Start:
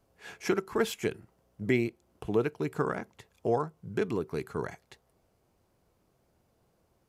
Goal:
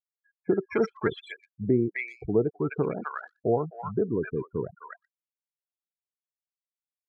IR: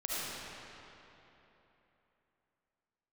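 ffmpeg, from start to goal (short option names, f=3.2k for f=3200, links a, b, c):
-filter_complex "[0:a]afftfilt=real='re*gte(hypot(re,im),0.0355)':imag='im*gte(hypot(re,im),0.0355)':win_size=1024:overlap=0.75,adynamicsmooth=sensitivity=2:basefreq=6.5k,acrossover=split=940|3800[a][b][c];[b]adelay=260[d];[c]adelay=380[e];[a][d][e]amix=inputs=3:normalize=0,volume=4dB"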